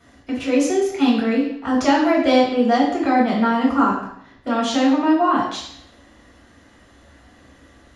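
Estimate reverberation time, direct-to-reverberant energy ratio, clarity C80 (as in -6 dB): 0.65 s, -4.5 dB, 7.0 dB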